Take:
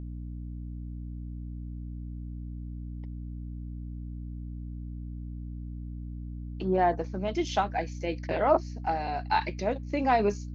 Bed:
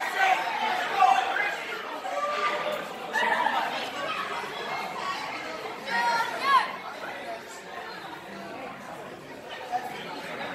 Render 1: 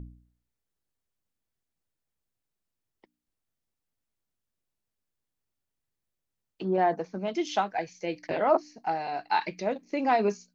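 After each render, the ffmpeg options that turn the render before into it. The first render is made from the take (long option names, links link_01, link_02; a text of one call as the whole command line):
ffmpeg -i in.wav -af "bandreject=frequency=60:width_type=h:width=4,bandreject=frequency=120:width_type=h:width=4,bandreject=frequency=180:width_type=h:width=4,bandreject=frequency=240:width_type=h:width=4,bandreject=frequency=300:width_type=h:width=4" out.wav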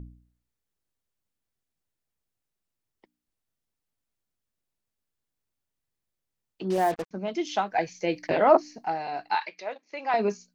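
ffmpeg -i in.wav -filter_complex "[0:a]asettb=1/sr,asplit=3[link_01][link_02][link_03];[link_01]atrim=end=6.704[link_04];[link_02]atrim=start=6.7:end=7.11,asetpts=PTS-STARTPTS,afade=type=in:duration=0.004:curve=qsin,afade=type=out:start_time=0.406:duration=0.004:curve=qsin,acrusher=bits=5:mix=0:aa=0.5[link_05];[link_03]atrim=start=7.106[link_06];[link_04][link_05]acrossfade=duration=0.004:curve1=hsin:curve2=qsin[link_07];[link_07][link_06]acrossfade=duration=0.004:curve1=qsin:curve2=hsin,asettb=1/sr,asplit=3[link_08][link_09][link_10];[link_08]atrim=end=7.724[link_11];[link_09]atrim=start=7.72:end=8.85,asetpts=PTS-STARTPTS,afade=type=in:duration=0.004:curve=qsin,afade=type=out:start_time=1.126:duration=0.004:curve=qsin,acontrast=29[link_12];[link_10]atrim=start=8.846[link_13];[link_11][link_12]acrossfade=duration=0.004:curve1=hsin:curve2=qsin[link_14];[link_14][link_13]acrossfade=duration=0.004:curve1=qsin:curve2=hsin,asettb=1/sr,asplit=3[link_15][link_16][link_17];[link_15]atrim=end=9.354[link_18];[link_16]atrim=start=9.35:end=10.14,asetpts=PTS-STARTPTS,afade=type=in:duration=0.004:curve=qsin,afade=type=out:start_time=0.786:duration=0.004:curve=qsin,highpass=730,lowpass=5200[link_19];[link_17]atrim=start=10.136[link_20];[link_18][link_19]acrossfade=duration=0.004:curve1=hsin:curve2=qsin[link_21];[link_21][link_20]acrossfade=duration=0.004:curve1=qsin:curve2=hsin" out.wav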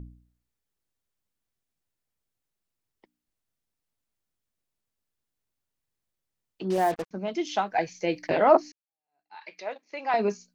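ffmpeg -i in.wav -filter_complex "[0:a]asplit=2[link_01][link_02];[link_01]atrim=end=8.72,asetpts=PTS-STARTPTS,afade=type=out:start_time=8.716:duration=0.004:curve=hsin[link_03];[link_02]atrim=start=8.72,asetpts=PTS-STARTPTS,afade=type=in:duration=0.8:curve=exp[link_04];[link_03][link_04]concat=n=2:v=0:a=1" out.wav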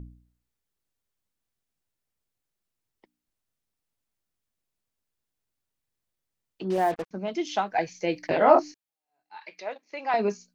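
ffmpeg -i in.wav -filter_complex "[0:a]asettb=1/sr,asplit=3[link_01][link_02][link_03];[link_01]atrim=end=6.644[link_04];[link_02]atrim=start=6.64:end=7.05,asetpts=PTS-STARTPTS,afade=type=in:duration=0.004:curve=qsin,afade=type=out:start_time=0.406:duration=0.004:curve=qsin,bass=frequency=250:gain=-1,treble=frequency=4000:gain=-5[link_05];[link_03]atrim=start=7.046[link_06];[link_04][link_05]acrossfade=duration=0.004:curve1=hsin:curve2=qsin[link_07];[link_07][link_06]acrossfade=duration=0.004:curve1=qsin:curve2=hsin,asettb=1/sr,asplit=3[link_08][link_09][link_10];[link_08]atrim=end=8.394[link_11];[link_09]atrim=start=8.39:end=9.38,asetpts=PTS-STARTPTS,afade=type=in:duration=0.004:curve=qsin,afade=type=out:start_time=0.986:duration=0.004:curve=qsin,asplit=2[link_12][link_13];[link_13]adelay=23,volume=-3.5dB[link_14];[link_12][link_14]amix=inputs=2:normalize=0,atrim=end_sample=43659[link_15];[link_10]atrim=start=9.376[link_16];[link_11][link_15]acrossfade=duration=0.004:curve1=hsin:curve2=qsin[link_17];[link_17][link_16]acrossfade=duration=0.004:curve1=qsin:curve2=hsin" out.wav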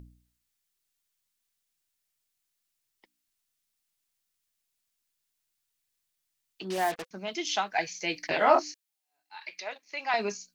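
ffmpeg -i in.wav -af "tiltshelf=frequency=1300:gain=-8,bandreject=frequency=510:width=12" out.wav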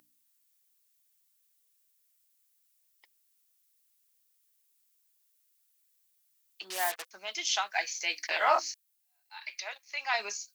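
ffmpeg -i in.wav -af "highpass=910,highshelf=frequency=8100:gain=12" out.wav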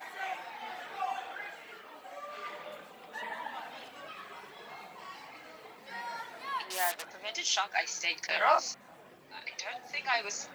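ffmpeg -i in.wav -i bed.wav -filter_complex "[1:a]volume=-15dB[link_01];[0:a][link_01]amix=inputs=2:normalize=0" out.wav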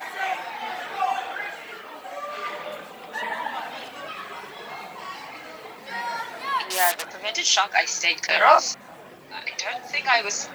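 ffmpeg -i in.wav -af "volume=10.5dB" out.wav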